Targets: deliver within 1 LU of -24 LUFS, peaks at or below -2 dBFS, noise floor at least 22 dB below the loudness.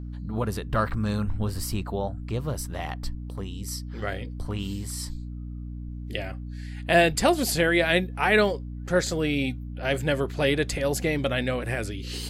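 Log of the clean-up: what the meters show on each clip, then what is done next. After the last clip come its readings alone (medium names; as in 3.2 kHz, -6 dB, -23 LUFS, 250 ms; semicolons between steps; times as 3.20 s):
hum 60 Hz; highest harmonic 300 Hz; hum level -33 dBFS; loudness -26.5 LUFS; peak level -7.5 dBFS; loudness target -24.0 LUFS
-> de-hum 60 Hz, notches 5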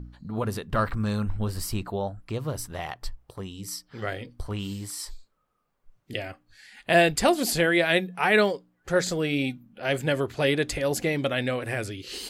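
hum not found; loudness -26.5 LUFS; peak level -8.0 dBFS; loudness target -24.0 LUFS
-> trim +2.5 dB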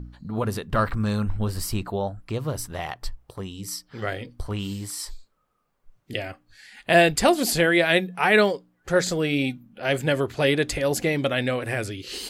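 loudness -24.0 LUFS; peak level -5.5 dBFS; noise floor -70 dBFS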